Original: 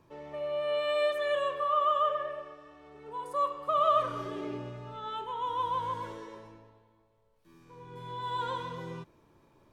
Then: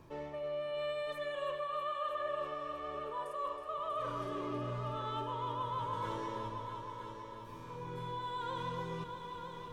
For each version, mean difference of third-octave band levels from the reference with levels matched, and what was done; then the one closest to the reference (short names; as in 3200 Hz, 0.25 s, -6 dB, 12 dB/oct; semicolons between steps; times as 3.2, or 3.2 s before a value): 7.0 dB: low shelf 80 Hz +6.5 dB; reverse; compressor 6:1, threshold -42 dBFS, peak gain reduction 19.5 dB; reverse; multi-head echo 0.321 s, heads all three, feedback 51%, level -11 dB; gain +4.5 dB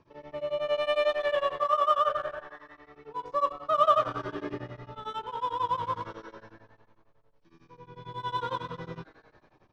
3.0 dB: Chebyshev low-pass 5700 Hz, order 4; in parallel at -5.5 dB: backlash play -32 dBFS; on the sum: frequency-shifting echo 0.167 s, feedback 64%, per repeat +150 Hz, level -21 dB; beating tremolo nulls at 11 Hz; gain +2.5 dB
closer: second